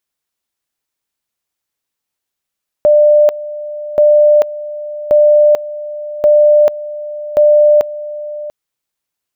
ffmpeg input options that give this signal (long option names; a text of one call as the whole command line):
ffmpeg -f lavfi -i "aevalsrc='pow(10,(-4.5-16.5*gte(mod(t,1.13),0.44))/20)*sin(2*PI*596*t)':duration=5.65:sample_rate=44100" out.wav